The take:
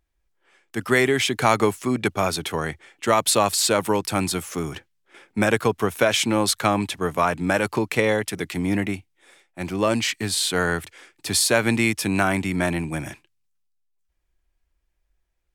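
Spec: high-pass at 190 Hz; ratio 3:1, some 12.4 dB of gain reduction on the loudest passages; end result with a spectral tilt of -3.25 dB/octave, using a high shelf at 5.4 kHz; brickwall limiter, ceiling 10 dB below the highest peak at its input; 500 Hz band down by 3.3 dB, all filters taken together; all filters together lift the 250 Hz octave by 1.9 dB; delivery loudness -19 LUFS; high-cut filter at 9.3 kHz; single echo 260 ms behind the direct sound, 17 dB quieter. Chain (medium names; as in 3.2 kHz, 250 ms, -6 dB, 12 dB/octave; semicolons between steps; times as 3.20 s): high-pass 190 Hz; low-pass 9.3 kHz; peaking EQ 250 Hz +6 dB; peaking EQ 500 Hz -6 dB; treble shelf 5.4 kHz +7 dB; compression 3:1, threshold -32 dBFS; peak limiter -23.5 dBFS; delay 260 ms -17 dB; trim +15.5 dB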